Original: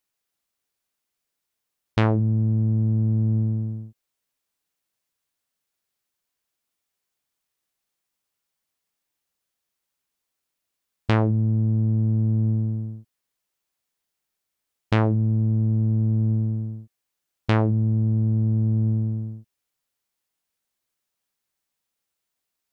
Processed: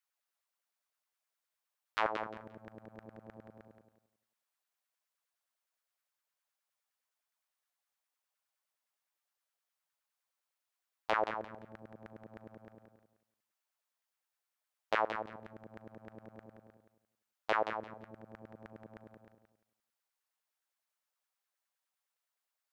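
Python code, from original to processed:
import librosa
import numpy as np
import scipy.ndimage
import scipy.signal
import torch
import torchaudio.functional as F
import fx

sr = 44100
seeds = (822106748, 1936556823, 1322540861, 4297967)

p1 = fx.filter_lfo_highpass(x, sr, shape='saw_down', hz=9.7, low_hz=510.0, high_hz=1700.0, q=2.8)
p2 = p1 + fx.echo_feedback(p1, sr, ms=174, feedback_pct=22, wet_db=-8.0, dry=0)
y = p2 * 10.0 ** (-9.0 / 20.0)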